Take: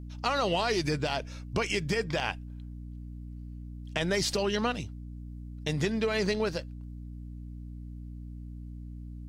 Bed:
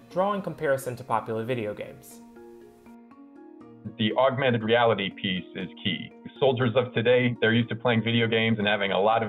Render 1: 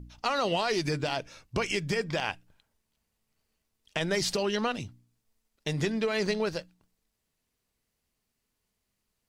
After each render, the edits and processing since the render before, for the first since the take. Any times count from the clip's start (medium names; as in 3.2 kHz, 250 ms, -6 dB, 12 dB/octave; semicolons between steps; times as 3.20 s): de-hum 60 Hz, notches 5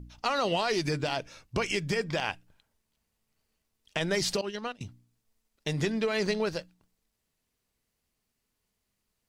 4.41–4.81 s: expander -23 dBFS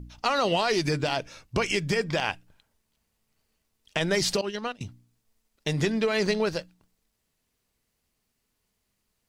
trim +3.5 dB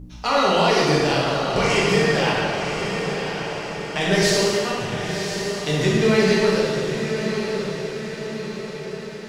echo that smears into a reverb 1042 ms, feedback 56%, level -7 dB; plate-style reverb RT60 2.1 s, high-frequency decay 0.75×, DRR -6.5 dB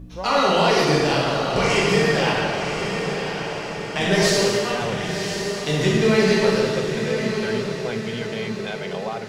add bed -8 dB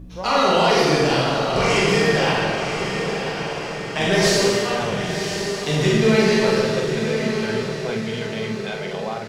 doubling 45 ms -5.5 dB